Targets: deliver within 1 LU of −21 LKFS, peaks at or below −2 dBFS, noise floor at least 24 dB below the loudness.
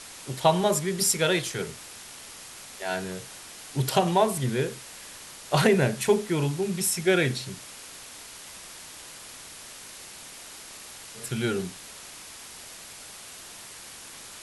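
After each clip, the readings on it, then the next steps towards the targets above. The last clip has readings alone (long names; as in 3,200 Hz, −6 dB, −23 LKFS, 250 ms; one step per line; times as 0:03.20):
background noise floor −44 dBFS; target noise floor −50 dBFS; integrated loudness −26.0 LKFS; sample peak −7.0 dBFS; target loudness −21.0 LKFS
→ broadband denoise 6 dB, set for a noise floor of −44 dBFS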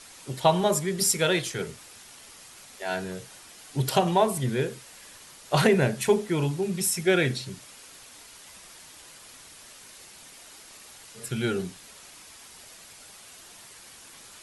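background noise floor −49 dBFS; target noise floor −50 dBFS
→ broadband denoise 6 dB, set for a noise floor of −49 dBFS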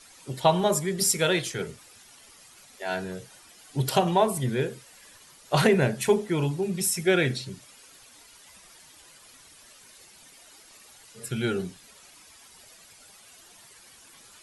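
background noise floor −53 dBFS; integrated loudness −25.5 LKFS; sample peak −7.5 dBFS; target loudness −21.0 LKFS
→ level +4.5 dB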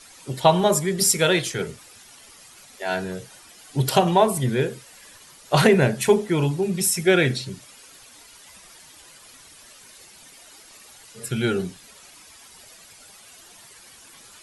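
integrated loudness −21.0 LKFS; sample peak −3.0 dBFS; background noise floor −49 dBFS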